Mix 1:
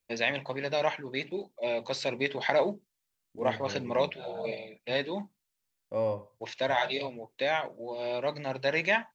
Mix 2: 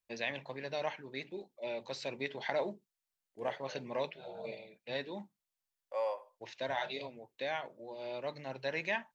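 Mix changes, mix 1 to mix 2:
first voice -8.5 dB; second voice: add high-pass 620 Hz 24 dB/octave

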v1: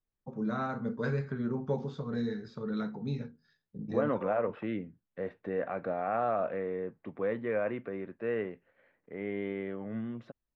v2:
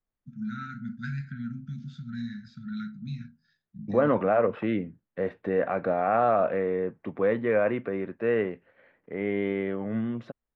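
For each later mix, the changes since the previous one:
first voice: add brick-wall FIR band-stop 260–1300 Hz; second voice +7.5 dB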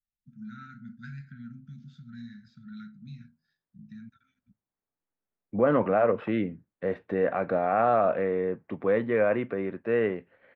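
first voice -8.0 dB; second voice: entry +1.65 s

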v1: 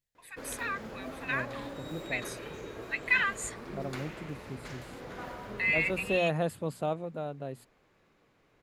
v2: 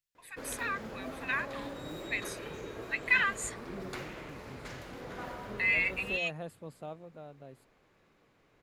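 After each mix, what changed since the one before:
second voice -11.5 dB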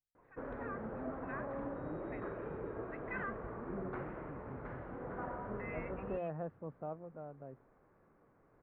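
first voice -9.5 dB; master: add low-pass 1.5 kHz 24 dB/octave

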